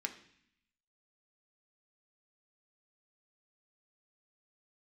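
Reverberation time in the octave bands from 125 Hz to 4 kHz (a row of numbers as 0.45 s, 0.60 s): 0.95 s, 0.95 s, 0.60 s, 0.65 s, 0.90 s, 0.85 s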